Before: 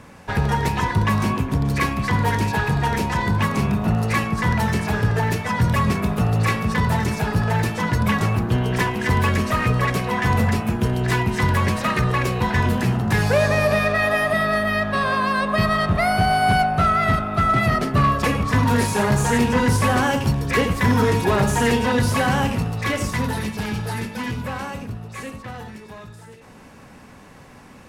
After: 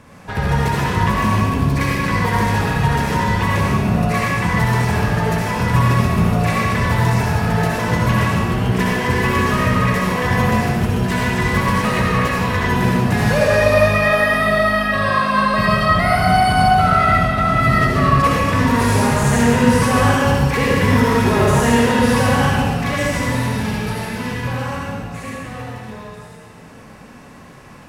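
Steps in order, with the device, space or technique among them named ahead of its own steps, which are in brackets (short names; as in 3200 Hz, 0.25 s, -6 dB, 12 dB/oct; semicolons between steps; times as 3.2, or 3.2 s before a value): stairwell (reverb RT60 1.8 s, pre-delay 58 ms, DRR -5 dB); gain -2 dB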